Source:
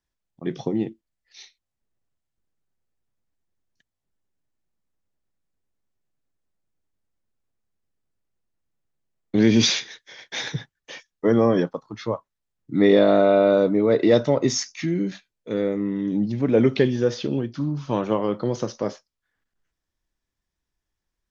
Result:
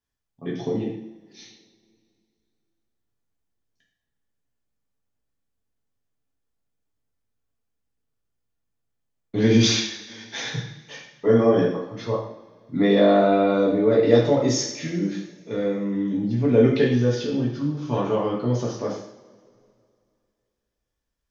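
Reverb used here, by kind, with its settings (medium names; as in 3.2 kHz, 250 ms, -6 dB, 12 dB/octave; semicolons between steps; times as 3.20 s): two-slope reverb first 0.62 s, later 2.5 s, from -21 dB, DRR -4.5 dB; trim -6 dB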